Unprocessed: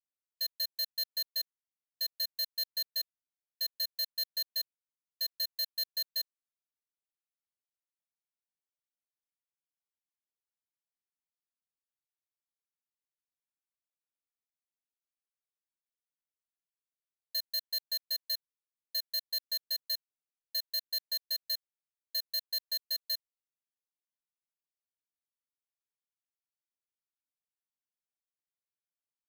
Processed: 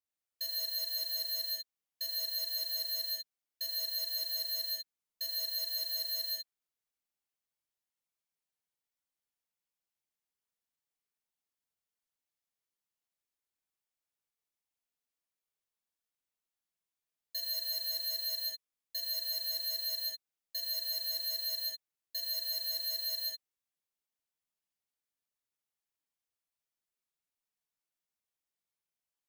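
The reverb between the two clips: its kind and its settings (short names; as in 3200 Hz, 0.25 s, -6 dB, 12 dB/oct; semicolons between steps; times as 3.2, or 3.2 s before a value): non-linear reverb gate 0.22 s flat, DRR -3.5 dB; gain -3 dB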